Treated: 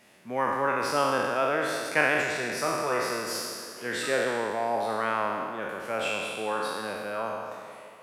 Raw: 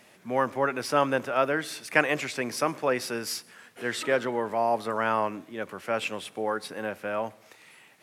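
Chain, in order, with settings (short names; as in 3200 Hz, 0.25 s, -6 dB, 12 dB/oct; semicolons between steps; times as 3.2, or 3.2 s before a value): spectral trails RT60 1.83 s; 2.22–3.35 notch comb 270 Hz; tape echo 0.167 s, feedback 78%, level -14 dB, low-pass 2400 Hz; gain -4.5 dB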